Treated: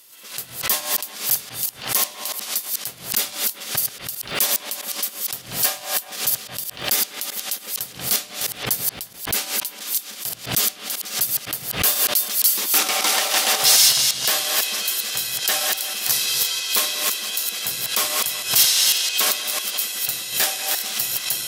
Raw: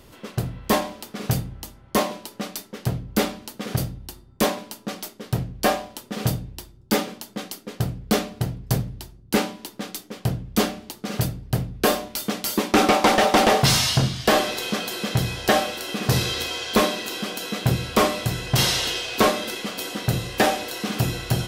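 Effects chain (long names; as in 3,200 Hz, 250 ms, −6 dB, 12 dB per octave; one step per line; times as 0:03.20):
delay that plays each chunk backwards 166 ms, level −1.5 dB
harmonic generator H 6 −30 dB, 8 −45 dB, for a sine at −4.5 dBFS
first difference
bucket-brigade delay 188 ms, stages 4,096, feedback 56%, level −15 dB
background raised ahead of every attack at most 130 dB per second
level +8 dB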